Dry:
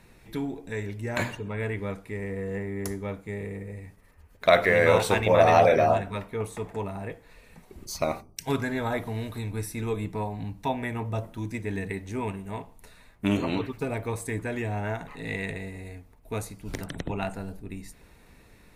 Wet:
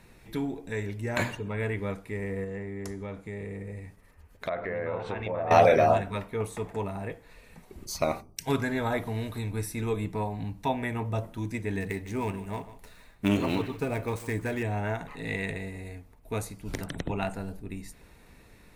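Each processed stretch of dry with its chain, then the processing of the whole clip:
2.44–5.51 treble ducked by the level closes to 1500 Hz, closed at -17 dBFS + compressor 2.5:1, threshold -34 dBFS
11.8–14.63 switching dead time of 0.054 ms + echo 0.153 s -14.5 dB
whole clip: dry

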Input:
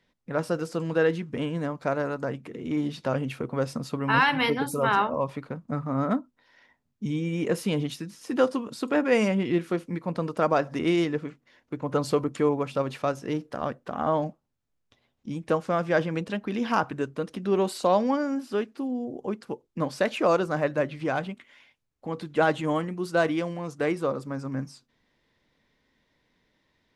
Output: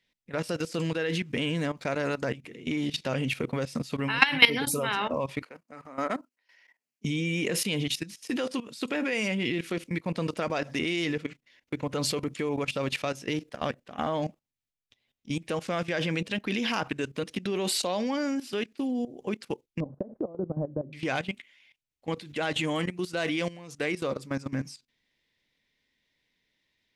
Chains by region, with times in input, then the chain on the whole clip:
5.42–7.05 HPF 430 Hz + bell 3600 Hz -11.5 dB 0.21 oct
19.8–20.93 compressor 8:1, threshold -25 dBFS + Gaussian blur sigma 12 samples + low shelf 230 Hz +3.5 dB
whole clip: gate -42 dBFS, range -8 dB; resonant high shelf 1700 Hz +8.5 dB, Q 1.5; level quantiser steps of 16 dB; gain +3.5 dB

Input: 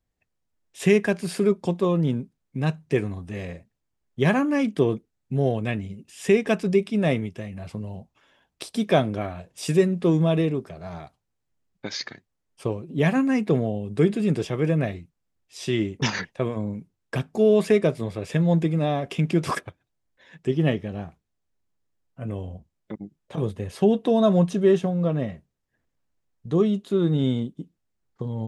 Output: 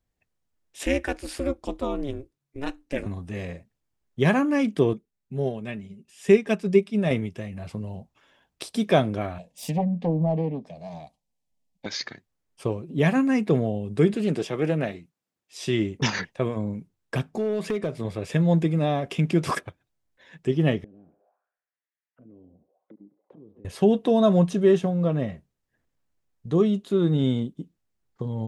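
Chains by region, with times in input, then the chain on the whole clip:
0.83–3.06 ring modulator 140 Hz + low shelf 500 Hz -5.5 dB
4.93–7.11 comb 5 ms, depth 42% + upward expander, over -26 dBFS
9.38–11.86 self-modulated delay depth 0.39 ms + treble ducked by the level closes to 930 Hz, closed at -16.5 dBFS + fixed phaser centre 370 Hz, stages 6
14.14–15.64 HPF 180 Hz + Doppler distortion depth 0.16 ms
17.3–18.05 high shelf 8500 Hz -7 dB + compressor 3:1, threshold -24 dBFS + hard clip -20 dBFS
20.84–23.65 band-limited delay 67 ms, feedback 63%, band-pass 1100 Hz, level -14.5 dB + compressor 4:1, threshold -40 dBFS + auto-wah 290–2100 Hz, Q 3, down, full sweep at -44 dBFS
whole clip: dry

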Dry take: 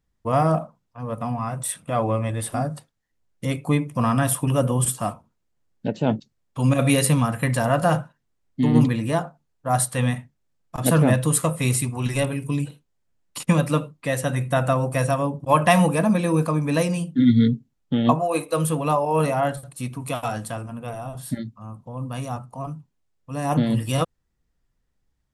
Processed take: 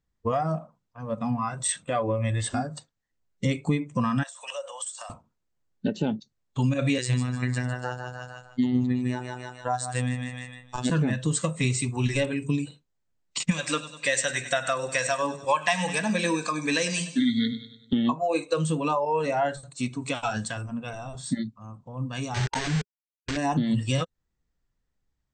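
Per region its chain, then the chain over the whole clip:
4.23–5.1 elliptic high-pass 530 Hz + high shelf 6700 Hz +6 dB + compressor 10:1, threshold -32 dBFS
6.98–10.9 robotiser 125 Hz + feedback echo 0.152 s, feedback 37%, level -6 dB + mismatched tape noise reduction encoder only
13.51–17.93 tilt +3 dB/oct + feedback echo 98 ms, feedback 52%, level -14 dB
22.34–23.37 negative-ratio compressor -34 dBFS, ratio -0.5 + careless resampling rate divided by 6×, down none, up hold + companded quantiser 2-bit
whole clip: Chebyshev low-pass 8400 Hz, order 10; compressor 6:1, threshold -26 dBFS; spectral noise reduction 10 dB; gain +6 dB

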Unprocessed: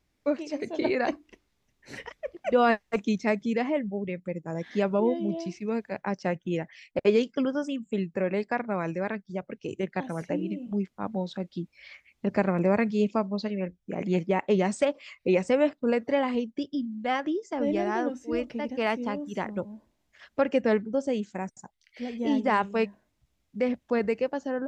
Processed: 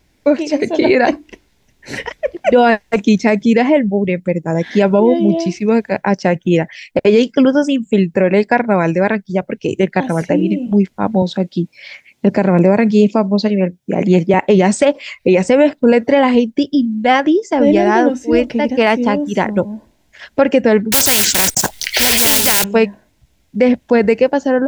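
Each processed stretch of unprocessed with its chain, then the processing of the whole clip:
11.22–14.34 HPF 110 Hz 24 dB/oct + bell 1800 Hz -3 dB 1.7 oct
20.92–22.64 block floating point 5-bit + high shelf 2500 Hz +8.5 dB + spectral compressor 4:1
whole clip: notch 1200 Hz, Q 6.2; maximiser +17.5 dB; gain -1 dB

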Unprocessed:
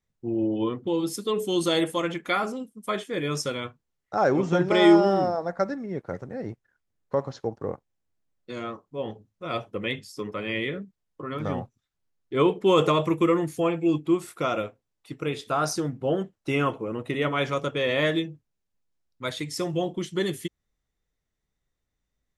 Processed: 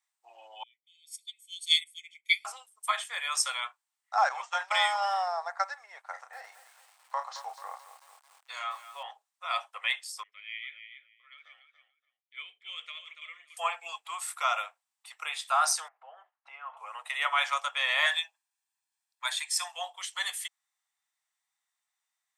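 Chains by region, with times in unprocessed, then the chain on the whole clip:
0.63–2.45 steep high-pass 2000 Hz 96 dB/oct + comb 0.9 ms, depth 97% + upward expander 2.5:1, over -37 dBFS
4.29–5.27 expander -22 dBFS + compressor 4:1, threshold -16 dBFS
6.11–9.03 doubler 32 ms -7 dB + lo-fi delay 0.219 s, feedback 55%, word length 8-bit, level -13 dB
10.23–13.57 vowel filter i + feedback echo 0.286 s, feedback 16%, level -9 dB
15.88–16.77 LPF 1600 Hz + compressor 8:1, threshold -34 dBFS
18.06–19.74 HPF 780 Hz + comb 1.2 ms, depth 48%
whole clip: steep high-pass 760 Hz 48 dB/oct; bell 8400 Hz +9.5 dB 0.25 oct; notch 1500 Hz, Q 22; gain +2.5 dB

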